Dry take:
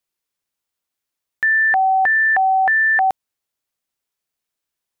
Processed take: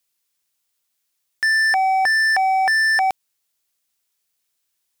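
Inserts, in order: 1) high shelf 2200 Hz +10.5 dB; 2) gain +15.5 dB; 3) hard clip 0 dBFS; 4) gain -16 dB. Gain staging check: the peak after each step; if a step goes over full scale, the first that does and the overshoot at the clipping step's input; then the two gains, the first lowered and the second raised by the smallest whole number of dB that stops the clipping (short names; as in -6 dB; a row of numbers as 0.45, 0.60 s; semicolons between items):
-8.0, +7.5, 0.0, -16.0 dBFS; step 2, 7.5 dB; step 2 +7.5 dB, step 4 -8 dB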